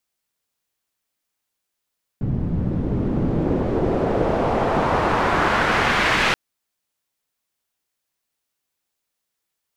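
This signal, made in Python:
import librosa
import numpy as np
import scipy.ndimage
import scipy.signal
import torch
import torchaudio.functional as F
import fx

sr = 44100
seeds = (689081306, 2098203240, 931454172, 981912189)

y = fx.riser_noise(sr, seeds[0], length_s=4.13, colour='white', kind='lowpass', start_hz=140.0, end_hz=2400.0, q=1.2, swell_db=-9, law='exponential')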